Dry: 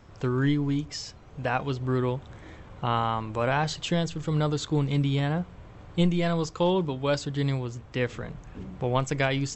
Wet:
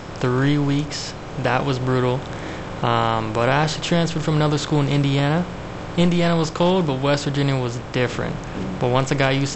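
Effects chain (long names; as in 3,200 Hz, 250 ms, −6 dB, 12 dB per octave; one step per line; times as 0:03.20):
compressor on every frequency bin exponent 0.6
level +4 dB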